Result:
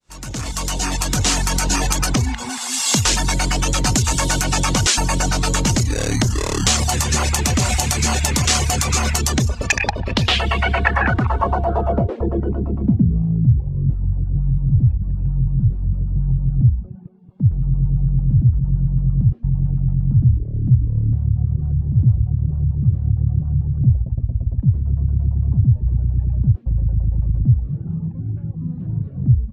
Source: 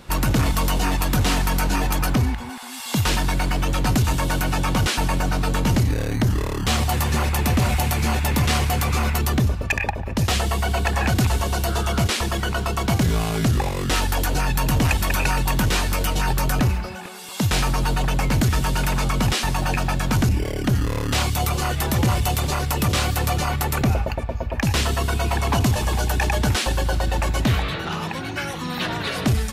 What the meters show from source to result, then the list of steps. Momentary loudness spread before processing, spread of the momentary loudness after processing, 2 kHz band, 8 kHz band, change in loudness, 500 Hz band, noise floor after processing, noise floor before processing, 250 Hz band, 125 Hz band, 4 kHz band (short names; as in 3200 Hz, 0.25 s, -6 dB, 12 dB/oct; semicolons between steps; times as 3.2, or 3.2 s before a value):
4 LU, 6 LU, 0.0 dB, +7.0 dB, +3.0 dB, -1.0 dB, -30 dBFS, -30 dBFS, +1.0 dB, +5.0 dB, +2.0 dB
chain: opening faded in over 2.05 s; reverb removal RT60 0.54 s; high shelf 7000 Hz +11 dB; de-hum 231.6 Hz, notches 4; compressor, threshold -22 dBFS, peak gain reduction 7 dB; low-pass sweep 6900 Hz -> 130 Hz, 9.6–13.44; gain +7 dB